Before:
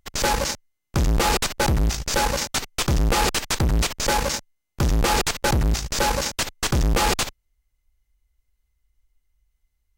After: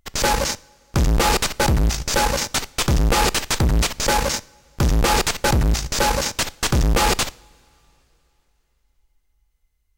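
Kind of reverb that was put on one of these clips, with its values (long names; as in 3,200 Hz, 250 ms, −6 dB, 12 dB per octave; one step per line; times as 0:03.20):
coupled-rooms reverb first 0.54 s, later 3.4 s, from −18 dB, DRR 19 dB
level +2.5 dB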